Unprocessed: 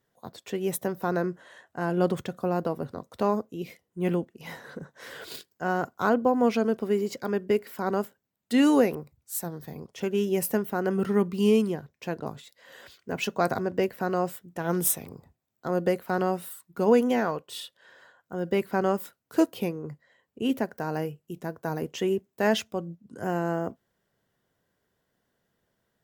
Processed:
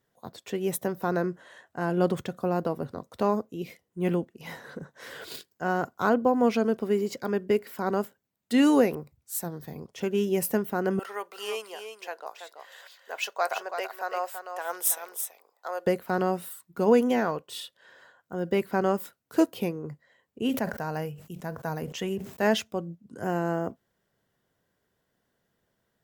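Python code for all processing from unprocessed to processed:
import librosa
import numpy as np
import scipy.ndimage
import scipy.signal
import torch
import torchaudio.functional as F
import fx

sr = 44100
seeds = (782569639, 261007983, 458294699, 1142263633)

y = fx.chain(x, sr, fx.highpass(hz=600.0, slope=24),
    fx.echo_single(ms=331, db=-8.0), at=(10.99, 15.87))
y = fx.chain(y, sr, fx.peak_eq(hz=350.0, db=-8.0, octaves=0.66),
    fx.sustainer(db_per_s=100.0), at=(20.49, 22.42))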